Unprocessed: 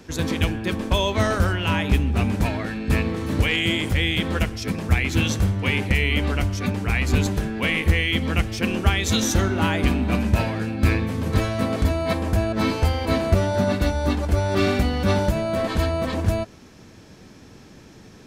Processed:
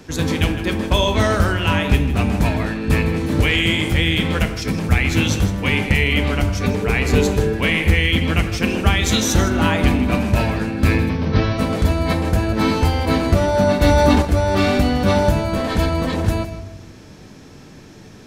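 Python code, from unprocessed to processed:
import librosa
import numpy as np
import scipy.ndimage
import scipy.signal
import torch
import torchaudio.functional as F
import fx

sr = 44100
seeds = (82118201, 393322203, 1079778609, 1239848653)

y = fx.peak_eq(x, sr, hz=440.0, db=11.5, octaves=0.31, at=(6.63, 7.53))
y = fx.steep_lowpass(y, sr, hz=5900.0, slope=96, at=(11.08, 11.57), fade=0.02)
y = y + 10.0 ** (-13.0 / 20.0) * np.pad(y, (int(158 * sr / 1000.0), 0))[:len(y)]
y = fx.room_shoebox(y, sr, seeds[0], volume_m3=230.0, walls='mixed', distance_m=0.39)
y = fx.env_flatten(y, sr, amount_pct=70, at=(13.81, 14.21), fade=0.02)
y = y * librosa.db_to_amplitude(3.5)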